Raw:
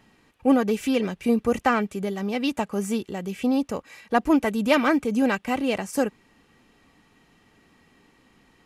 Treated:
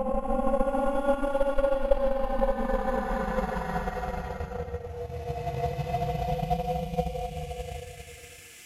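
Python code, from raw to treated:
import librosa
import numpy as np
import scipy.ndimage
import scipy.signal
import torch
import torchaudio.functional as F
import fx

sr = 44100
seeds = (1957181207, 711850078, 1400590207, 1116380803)

y = x * np.sin(2.0 * np.pi * 280.0 * np.arange(len(x)) / sr)
y = fx.paulstretch(y, sr, seeds[0], factor=25.0, window_s=0.1, from_s=0.46)
y = fx.transient(y, sr, attack_db=9, sustain_db=-6)
y = y * librosa.db_to_amplitude(-6.0)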